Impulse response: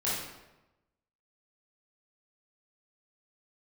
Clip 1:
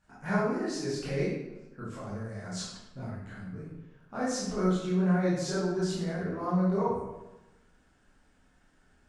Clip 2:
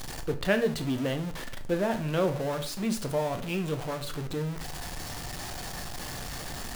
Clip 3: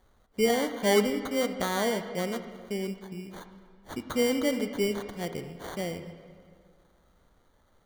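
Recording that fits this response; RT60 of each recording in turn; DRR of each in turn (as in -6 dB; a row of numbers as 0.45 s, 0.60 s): 1; 1.0 s, 0.45 s, 2.1 s; -9.5 dB, 6.5 dB, 8.5 dB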